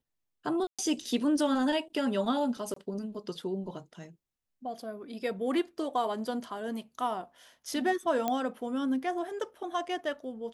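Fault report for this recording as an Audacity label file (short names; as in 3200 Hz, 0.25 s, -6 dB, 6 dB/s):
0.670000	0.790000	gap 0.116 s
2.740000	2.760000	gap 24 ms
8.280000	8.280000	pop -16 dBFS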